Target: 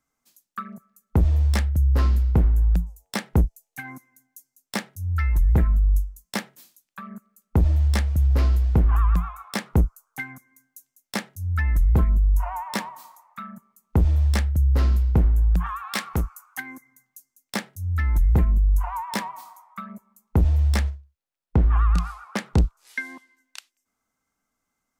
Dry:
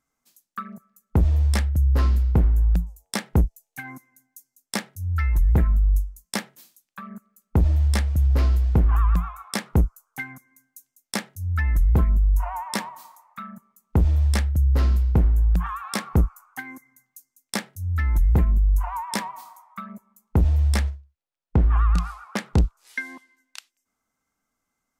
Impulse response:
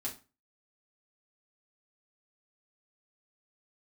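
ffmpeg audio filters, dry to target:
-filter_complex "[0:a]asettb=1/sr,asplit=3[s0][s1][s2];[s0]atrim=end=15.934[s3];[s1]atrim=start=15.93:end=16.6,asetpts=PTS-STARTPTS,afade=t=in:d=0.004:c=qsin,afade=t=out:st=0.666:d=0.004:c=qsin,tiltshelf=f=1100:g=-6[s4];[s2]atrim=start=16.596[s5];[s3][s4]acrossfade=d=0.004:c1=hsin:c2=qsin[s6];[s6][s5]acrossfade=d=0.004:c1=qsin:c2=hsin,acrossover=split=440|4300[s7][s8][s9];[s9]aeval=exprs='0.0668*(abs(mod(val(0)/0.0668+3,4)-2)-1)':c=same[s10];[s7][s8][s10]amix=inputs=3:normalize=0"

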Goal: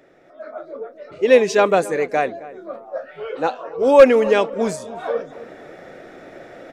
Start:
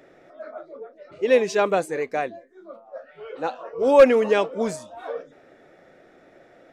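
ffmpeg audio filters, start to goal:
-filter_complex "[0:a]asplit=2[s0][s1];[s1]adelay=266,lowpass=f=1500:p=1,volume=0.126,asplit=2[s2][s3];[s3]adelay=266,lowpass=f=1500:p=1,volume=0.4,asplit=2[s4][s5];[s5]adelay=266,lowpass=f=1500:p=1,volume=0.4[s6];[s2][s4][s6]amix=inputs=3:normalize=0[s7];[s0][s7]amix=inputs=2:normalize=0,dynaudnorm=f=250:g=5:m=4.73,volume=0.891"

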